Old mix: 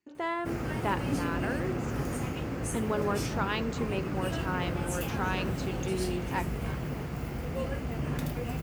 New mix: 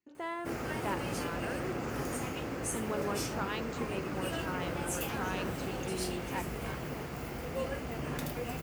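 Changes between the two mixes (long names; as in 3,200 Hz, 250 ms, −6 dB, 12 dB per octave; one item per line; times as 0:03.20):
speech −6.0 dB
first sound: add bass and treble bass −8 dB, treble +2 dB
second sound: muted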